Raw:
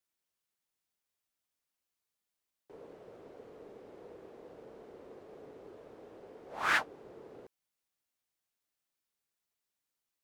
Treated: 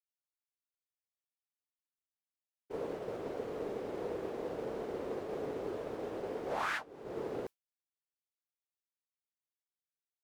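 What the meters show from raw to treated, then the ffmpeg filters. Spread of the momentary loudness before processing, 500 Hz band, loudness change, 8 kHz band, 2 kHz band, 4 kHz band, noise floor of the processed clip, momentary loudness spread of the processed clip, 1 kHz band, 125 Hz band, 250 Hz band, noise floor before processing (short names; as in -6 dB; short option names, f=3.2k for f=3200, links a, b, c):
22 LU, +11.0 dB, -7.5 dB, -4.5 dB, -7.0 dB, -5.5 dB, under -85 dBFS, 6 LU, -1.0 dB, +10.0 dB, +10.5 dB, under -85 dBFS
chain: -af "agate=range=-33dB:threshold=-49dB:ratio=3:detection=peak,acompressor=threshold=-48dB:ratio=16,volume=15dB"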